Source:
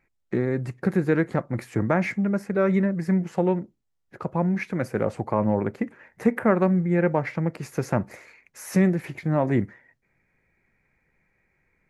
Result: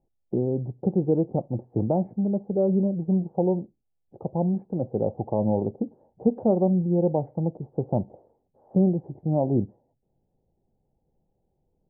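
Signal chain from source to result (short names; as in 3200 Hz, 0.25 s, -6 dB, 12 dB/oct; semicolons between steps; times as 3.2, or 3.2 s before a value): Chebyshev low-pass 820 Hz, order 5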